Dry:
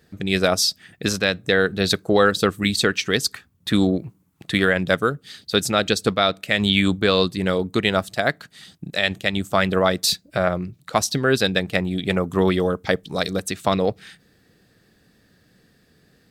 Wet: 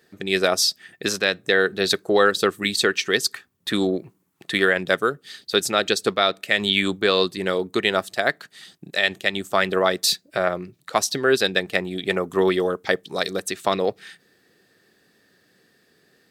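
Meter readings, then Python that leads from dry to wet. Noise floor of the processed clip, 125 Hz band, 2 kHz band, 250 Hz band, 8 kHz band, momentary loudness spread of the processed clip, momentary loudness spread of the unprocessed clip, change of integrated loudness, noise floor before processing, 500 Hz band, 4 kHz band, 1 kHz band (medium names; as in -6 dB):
-64 dBFS, -9.0 dB, +0.5 dB, -5.0 dB, 0.0 dB, 7 LU, 7 LU, -1.0 dB, -60 dBFS, 0.0 dB, 0.0 dB, -0.5 dB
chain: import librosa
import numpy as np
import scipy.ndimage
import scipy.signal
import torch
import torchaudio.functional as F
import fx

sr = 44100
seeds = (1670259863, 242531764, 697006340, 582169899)

y = fx.highpass(x, sr, hz=140.0, slope=6)
y = fx.low_shelf(y, sr, hz=210.0, db=-10.5)
y = fx.small_body(y, sr, hz=(380.0, 1800.0), ring_ms=45, db=6)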